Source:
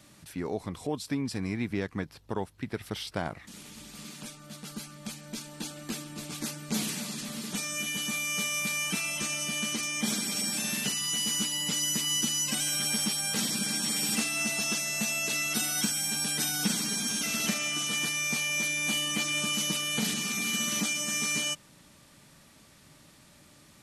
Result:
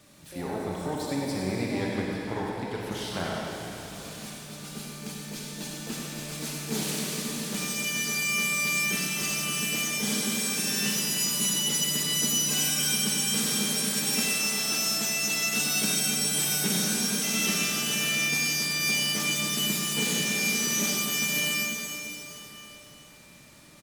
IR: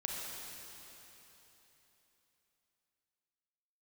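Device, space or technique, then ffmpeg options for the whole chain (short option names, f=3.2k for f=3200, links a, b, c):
shimmer-style reverb: -filter_complex "[0:a]asplit=2[a][b];[b]asetrate=88200,aresample=44100,atempo=0.5,volume=-8dB[c];[a][c]amix=inputs=2:normalize=0[d];[1:a]atrim=start_sample=2205[e];[d][e]afir=irnorm=-1:irlink=0,asettb=1/sr,asplit=3[f][g][h];[f]atrim=end=14.264[i];[g]atrim=start=14.26:end=15.58,asetpts=PTS-STARTPTS,afade=t=in:d=0.004:c=qsin,afade=t=out:st=1.316:d=0.004:c=qsin,highpass=f=190:p=1[j];[h]atrim=start=15.576[k];[i][j]acrossfade=d=0.004:c1=hsin:c2=qsin[l];[l][k]acrossfade=d=0.004:c1=qsin:c2=hsin,aecho=1:1:96:0.422"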